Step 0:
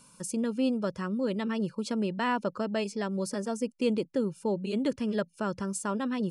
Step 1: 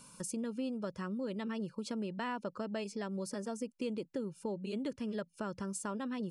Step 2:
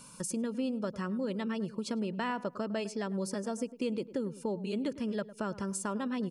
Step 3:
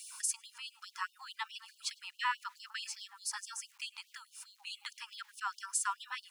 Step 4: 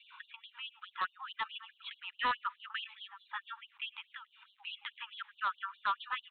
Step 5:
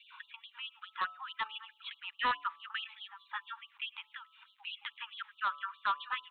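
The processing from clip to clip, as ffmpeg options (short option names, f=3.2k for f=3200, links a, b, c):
-af "acompressor=threshold=-41dB:ratio=2.5,volume=1dB"
-filter_complex "[0:a]asplit=2[a][b];[b]adelay=104,lowpass=f=1.2k:p=1,volume=-15dB,asplit=2[c][d];[d]adelay=104,lowpass=f=1.2k:p=1,volume=0.35,asplit=2[e][f];[f]adelay=104,lowpass=f=1.2k:p=1,volume=0.35[g];[a][c][e][g]amix=inputs=4:normalize=0,volume=4dB"
-af "aeval=exprs='val(0)*gte(abs(val(0)),0.00112)':c=same,afftfilt=real='re*gte(b*sr/1024,770*pow(2900/770,0.5+0.5*sin(2*PI*4.7*pts/sr)))':imag='im*gte(b*sr/1024,770*pow(2900/770,0.5+0.5*sin(2*PI*4.7*pts/sr)))':win_size=1024:overlap=0.75,volume=5dB"
-af "adynamicequalizer=threshold=0.002:dfrequency=1200:dqfactor=4.8:tfrequency=1200:tqfactor=4.8:attack=5:release=100:ratio=0.375:range=4:mode=boostabove:tftype=bell,aresample=8000,asoftclip=type=hard:threshold=-29dB,aresample=44100,volume=2.5dB"
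-af "bandreject=f=144.7:t=h:w=4,bandreject=f=289.4:t=h:w=4,bandreject=f=434.1:t=h:w=4,bandreject=f=578.8:t=h:w=4,bandreject=f=723.5:t=h:w=4,bandreject=f=868.2:t=h:w=4,bandreject=f=1.0129k:t=h:w=4,bandreject=f=1.1576k:t=h:w=4,bandreject=f=1.3023k:t=h:w=4,volume=1dB"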